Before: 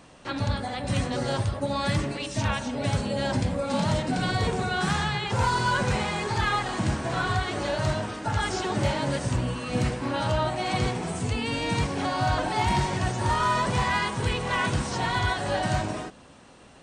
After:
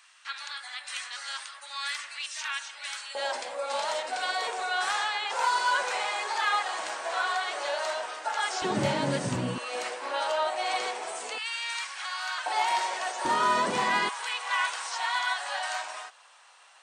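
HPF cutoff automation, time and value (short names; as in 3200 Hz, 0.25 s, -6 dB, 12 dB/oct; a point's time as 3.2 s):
HPF 24 dB/oct
1300 Hz
from 3.15 s 580 Hz
from 8.62 s 140 Hz
from 9.58 s 520 Hz
from 11.38 s 1200 Hz
from 12.46 s 570 Hz
from 13.25 s 230 Hz
from 14.09 s 850 Hz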